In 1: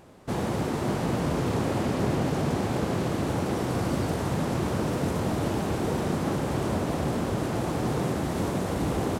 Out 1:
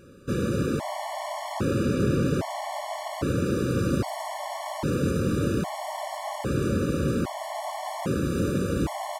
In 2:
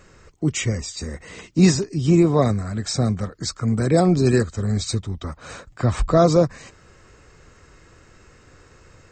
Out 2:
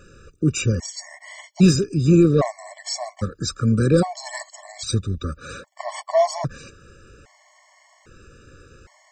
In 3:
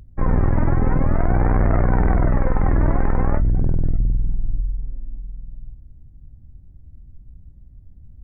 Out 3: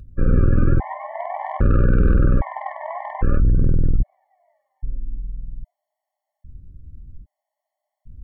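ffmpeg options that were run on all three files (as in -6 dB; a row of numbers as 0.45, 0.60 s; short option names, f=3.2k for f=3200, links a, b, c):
-af "acontrast=70,afftfilt=real='re*gt(sin(2*PI*0.62*pts/sr)*(1-2*mod(floor(b*sr/1024/580),2)),0)':imag='im*gt(sin(2*PI*0.62*pts/sr)*(1-2*mod(floor(b*sr/1024/580),2)),0)':win_size=1024:overlap=0.75,volume=-3.5dB"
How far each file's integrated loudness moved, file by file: 0.0, -0.5, -0.5 LU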